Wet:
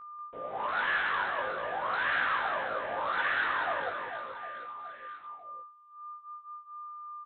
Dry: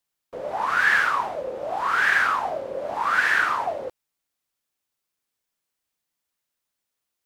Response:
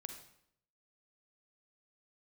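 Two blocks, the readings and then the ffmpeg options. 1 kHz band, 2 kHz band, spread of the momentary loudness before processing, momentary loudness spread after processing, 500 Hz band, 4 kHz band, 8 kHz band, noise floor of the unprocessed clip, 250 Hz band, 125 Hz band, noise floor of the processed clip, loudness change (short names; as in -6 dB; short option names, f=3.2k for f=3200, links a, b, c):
-6.5 dB, -8.5 dB, 14 LU, 17 LU, -6.5 dB, -5.0 dB, under -35 dB, -83 dBFS, -6.5 dB, -6.0 dB, -52 dBFS, -9.0 dB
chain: -af "aresample=8000,asoftclip=type=hard:threshold=-19dB,aresample=44100,aeval=exprs='val(0)+0.0158*sin(2*PI*1200*n/s)':c=same,aecho=1:1:190|437|758.1|1176|1718:0.631|0.398|0.251|0.158|0.1,flanger=delay=16.5:depth=3.1:speed=0.43,volume=-5.5dB"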